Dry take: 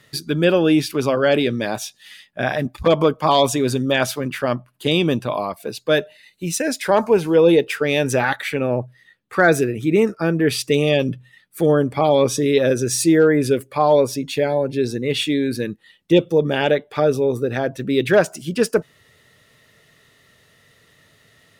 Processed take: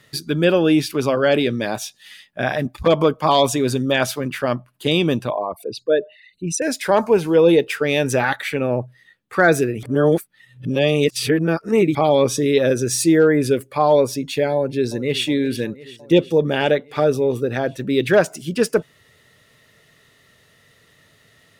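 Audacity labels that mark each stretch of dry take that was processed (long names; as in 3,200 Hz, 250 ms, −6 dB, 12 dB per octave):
5.300000	6.620000	spectral envelope exaggerated exponent 2
9.830000	11.950000	reverse
14.550000	15.240000	delay throw 360 ms, feedback 75%, level −17.5 dB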